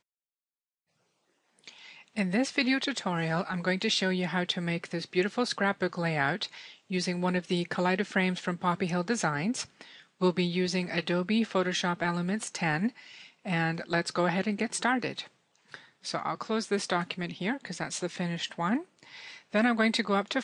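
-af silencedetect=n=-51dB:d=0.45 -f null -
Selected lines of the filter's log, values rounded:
silence_start: 0.00
silence_end: 1.59 | silence_duration: 1.59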